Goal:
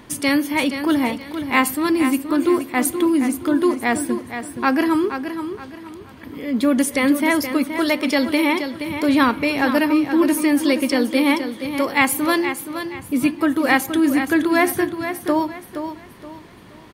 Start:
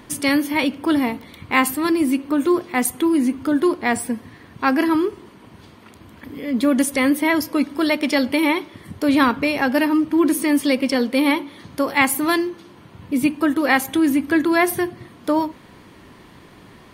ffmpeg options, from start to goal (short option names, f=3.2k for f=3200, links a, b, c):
-af "aecho=1:1:473|946|1419|1892:0.355|0.114|0.0363|0.0116"